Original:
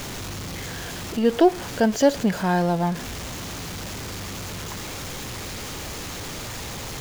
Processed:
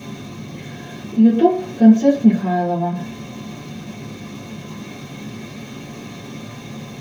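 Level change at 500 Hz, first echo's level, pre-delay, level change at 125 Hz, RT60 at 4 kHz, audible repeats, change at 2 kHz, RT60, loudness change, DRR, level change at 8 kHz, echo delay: +1.0 dB, no echo, 3 ms, +3.5 dB, 0.45 s, no echo, -3.5 dB, 0.50 s, +10.0 dB, -8.0 dB, no reading, no echo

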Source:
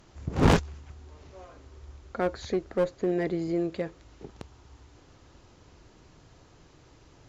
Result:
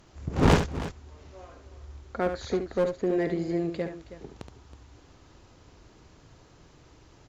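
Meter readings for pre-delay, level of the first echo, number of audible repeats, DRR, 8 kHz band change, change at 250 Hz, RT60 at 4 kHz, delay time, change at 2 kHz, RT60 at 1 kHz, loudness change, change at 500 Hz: no reverb, -8.0 dB, 2, no reverb, no reading, +0.5 dB, no reverb, 71 ms, +1.0 dB, no reverb, +0.5 dB, +1.0 dB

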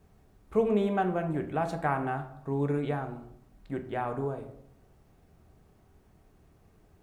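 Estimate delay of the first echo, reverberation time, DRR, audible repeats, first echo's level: no echo, 0.70 s, 5.5 dB, no echo, no echo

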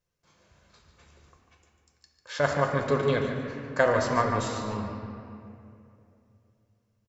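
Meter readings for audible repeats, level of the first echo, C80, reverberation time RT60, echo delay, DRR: 1, -9.0 dB, 4.0 dB, 2.6 s, 146 ms, 1.5 dB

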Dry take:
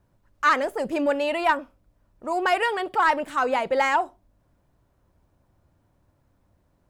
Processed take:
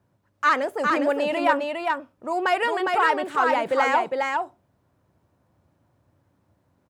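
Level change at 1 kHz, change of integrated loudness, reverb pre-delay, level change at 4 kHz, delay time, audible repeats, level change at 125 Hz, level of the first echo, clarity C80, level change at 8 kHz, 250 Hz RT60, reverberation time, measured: +1.5 dB, +0.5 dB, no reverb, +0.5 dB, 407 ms, 1, no reading, -3.5 dB, no reverb, -1.0 dB, no reverb, no reverb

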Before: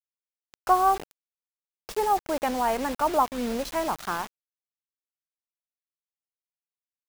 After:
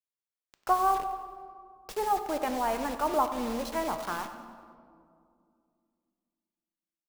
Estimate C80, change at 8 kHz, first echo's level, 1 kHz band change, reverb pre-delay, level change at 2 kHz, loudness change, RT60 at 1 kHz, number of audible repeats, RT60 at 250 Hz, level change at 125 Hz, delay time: 9.5 dB, -4.0 dB, -14.5 dB, -3.5 dB, 3 ms, -4.0 dB, -4.0 dB, 2.1 s, 4, 3.1 s, -3.5 dB, 96 ms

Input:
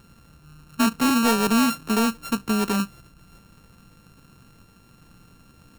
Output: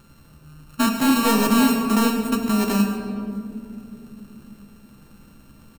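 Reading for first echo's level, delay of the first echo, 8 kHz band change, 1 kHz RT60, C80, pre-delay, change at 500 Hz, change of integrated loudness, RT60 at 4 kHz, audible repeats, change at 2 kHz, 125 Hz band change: -13.0 dB, 104 ms, +1.5 dB, 2.1 s, 6.0 dB, 3 ms, +2.5 dB, +2.0 dB, 1.3 s, 2, +1.0 dB, +4.0 dB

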